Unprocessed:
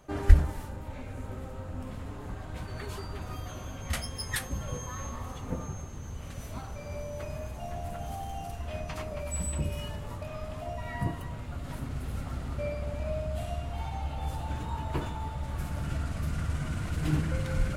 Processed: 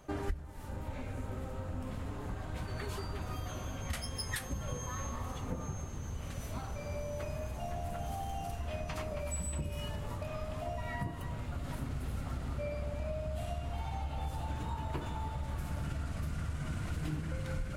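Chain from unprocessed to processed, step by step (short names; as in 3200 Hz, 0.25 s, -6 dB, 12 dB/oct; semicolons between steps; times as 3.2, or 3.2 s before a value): compressor 8:1, threshold -33 dBFS, peak gain reduction 23 dB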